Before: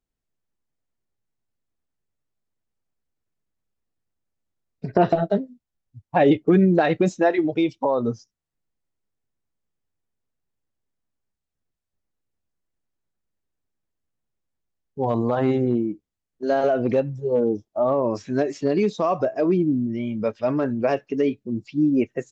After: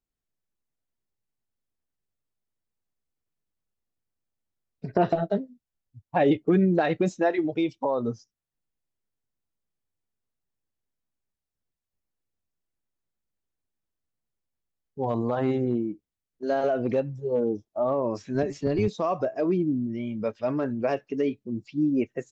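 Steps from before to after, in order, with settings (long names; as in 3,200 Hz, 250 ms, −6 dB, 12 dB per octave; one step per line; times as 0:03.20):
0:18.34–0:18.88: sub-octave generator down 1 octave, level −3 dB
level −4.5 dB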